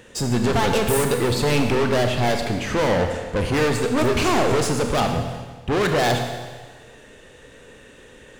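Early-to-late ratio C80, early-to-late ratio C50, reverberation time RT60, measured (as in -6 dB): 6.5 dB, 5.0 dB, 1.4 s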